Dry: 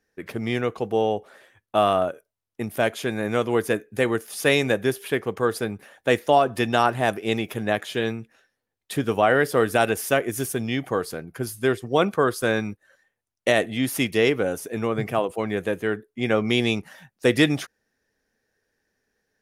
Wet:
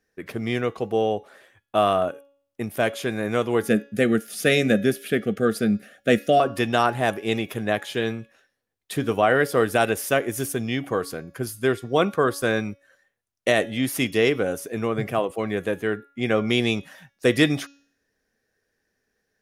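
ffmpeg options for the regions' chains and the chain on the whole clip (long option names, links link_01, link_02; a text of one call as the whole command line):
ffmpeg -i in.wav -filter_complex "[0:a]asettb=1/sr,asplit=3[link_01][link_02][link_03];[link_01]atrim=end=3.624[link_04];[link_02]atrim=start=3.62:end=6.4,asetpts=PTS-STARTPTS,afade=type=in:duration=0.004:curve=qsin,afade=type=out:start_time=2.776:duration=0.004:curve=qsin,asuperstop=centerf=960:order=12:qfactor=2.4,equalizer=frequency=210:width=3.2:gain=13.5[link_05];[link_03]atrim=start=6.396[link_06];[link_04][link_05]acrossfade=duration=0.004:curve1=hsin:curve2=qsin[link_07];[link_07][link_06]acrossfade=duration=0.004:curve1=qsin:curve2=hsin,bandreject=frequency=880:width=12,bandreject=frequency=280.5:width_type=h:width=4,bandreject=frequency=561:width_type=h:width=4,bandreject=frequency=841.5:width_type=h:width=4,bandreject=frequency=1122:width_type=h:width=4,bandreject=frequency=1402.5:width_type=h:width=4,bandreject=frequency=1683:width_type=h:width=4,bandreject=frequency=1963.5:width_type=h:width=4,bandreject=frequency=2244:width_type=h:width=4,bandreject=frequency=2524.5:width_type=h:width=4,bandreject=frequency=2805:width_type=h:width=4,bandreject=frequency=3085.5:width_type=h:width=4,bandreject=frequency=3366:width_type=h:width=4,bandreject=frequency=3646.5:width_type=h:width=4,bandreject=frequency=3927:width_type=h:width=4,bandreject=frequency=4207.5:width_type=h:width=4,bandreject=frequency=4488:width_type=h:width=4,bandreject=frequency=4768.5:width_type=h:width=4,bandreject=frequency=5049:width_type=h:width=4,bandreject=frequency=5329.5:width_type=h:width=4,bandreject=frequency=5610:width_type=h:width=4,bandreject=frequency=5890.5:width_type=h:width=4,bandreject=frequency=6171:width_type=h:width=4,bandreject=frequency=6451.5:width_type=h:width=4,bandreject=frequency=6732:width_type=h:width=4,bandreject=frequency=7012.5:width_type=h:width=4" out.wav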